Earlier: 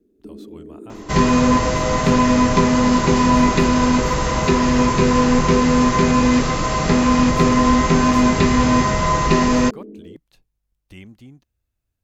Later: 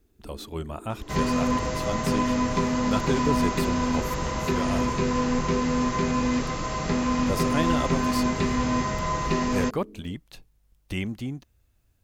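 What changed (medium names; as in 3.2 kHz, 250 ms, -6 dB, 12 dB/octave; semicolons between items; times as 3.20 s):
speech +11.0 dB; first sound -9.0 dB; second sound -9.5 dB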